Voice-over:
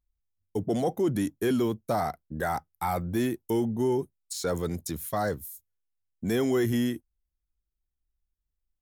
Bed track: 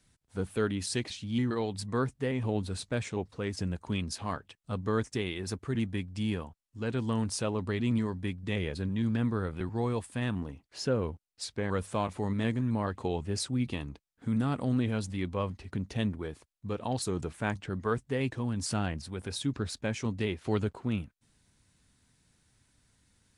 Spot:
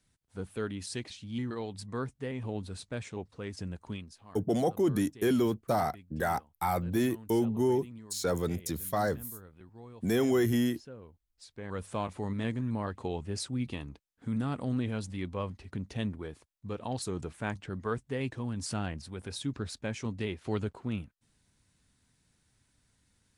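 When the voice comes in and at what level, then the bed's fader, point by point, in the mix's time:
3.80 s, −1.0 dB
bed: 0:03.91 −5.5 dB
0:04.17 −18.5 dB
0:11.27 −18.5 dB
0:11.88 −3 dB

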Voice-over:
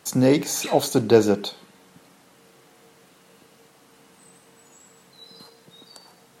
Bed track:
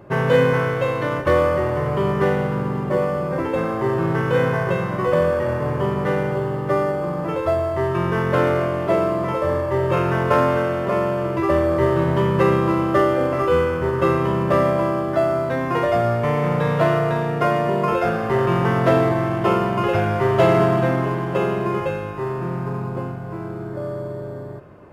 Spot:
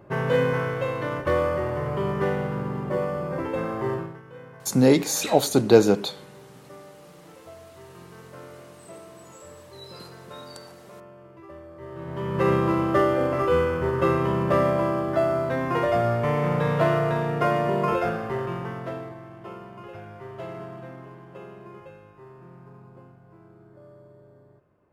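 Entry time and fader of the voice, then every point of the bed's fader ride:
4.60 s, +0.5 dB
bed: 0:03.94 −6 dB
0:04.21 −25.5 dB
0:11.75 −25.5 dB
0:12.50 −3.5 dB
0:17.94 −3.5 dB
0:19.20 −21.5 dB

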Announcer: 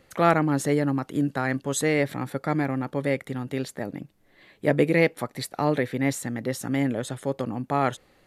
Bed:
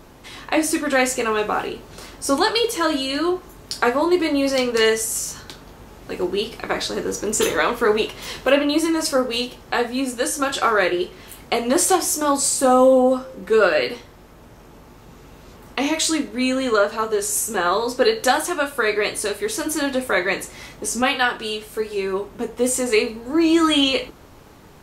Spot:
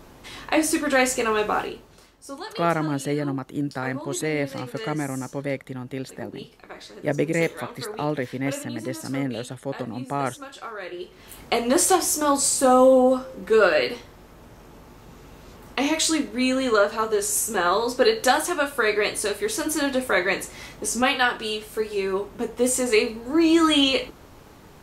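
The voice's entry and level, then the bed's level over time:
2.40 s, −2.5 dB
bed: 0:01.59 −1.5 dB
0:02.14 −17.5 dB
0:10.80 −17.5 dB
0:11.39 −1.5 dB

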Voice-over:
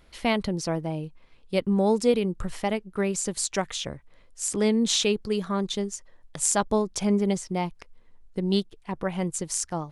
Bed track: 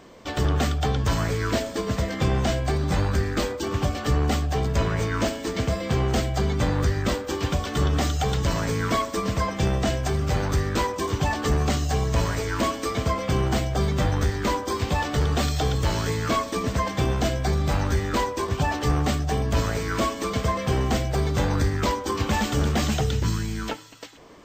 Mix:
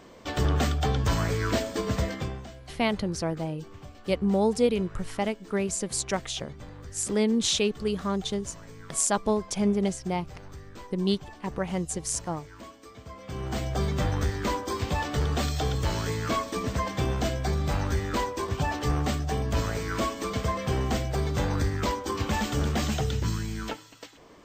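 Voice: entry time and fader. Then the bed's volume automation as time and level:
2.55 s, −1.5 dB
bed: 0:02.07 −2 dB
0:02.50 −21 dB
0:13.04 −21 dB
0:13.68 −4 dB

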